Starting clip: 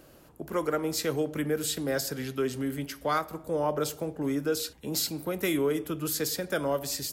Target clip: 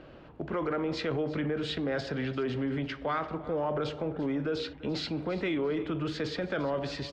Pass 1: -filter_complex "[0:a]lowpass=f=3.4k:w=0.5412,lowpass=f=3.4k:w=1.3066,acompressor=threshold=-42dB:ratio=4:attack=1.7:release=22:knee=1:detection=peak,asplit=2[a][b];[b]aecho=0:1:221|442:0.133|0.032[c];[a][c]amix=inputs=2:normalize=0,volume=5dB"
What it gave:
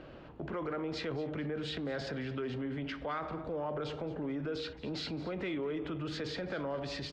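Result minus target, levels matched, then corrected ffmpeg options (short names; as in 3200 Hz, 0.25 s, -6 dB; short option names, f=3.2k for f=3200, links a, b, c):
echo 0.122 s early; compressor: peak gain reduction +6 dB
-filter_complex "[0:a]lowpass=f=3.4k:w=0.5412,lowpass=f=3.4k:w=1.3066,acompressor=threshold=-34dB:ratio=4:attack=1.7:release=22:knee=1:detection=peak,asplit=2[a][b];[b]aecho=0:1:343|686:0.133|0.032[c];[a][c]amix=inputs=2:normalize=0,volume=5dB"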